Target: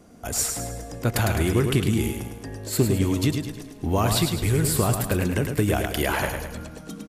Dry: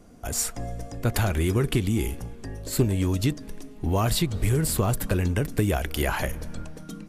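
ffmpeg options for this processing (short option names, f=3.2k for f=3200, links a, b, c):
-af "highpass=f=92:p=1,aecho=1:1:105|210|315|420|525|630:0.501|0.231|0.106|0.0488|0.0224|0.0103,volume=2dB"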